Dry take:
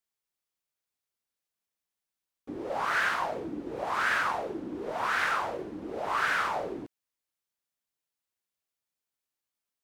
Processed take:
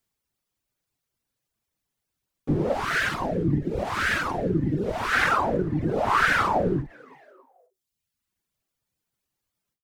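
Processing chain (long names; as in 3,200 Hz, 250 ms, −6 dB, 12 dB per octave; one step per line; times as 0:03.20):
sub-octave generator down 1 octave, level +1 dB
low-shelf EQ 420 Hz +8.5 dB
echo with shifted repeats 279 ms, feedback 42%, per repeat +120 Hz, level −19.5 dB
reverb reduction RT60 1 s
0:02.73–0:05.13: parametric band 1,000 Hz −8.5 dB 1.4 octaves
every ending faded ahead of time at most 200 dB per second
level +7.5 dB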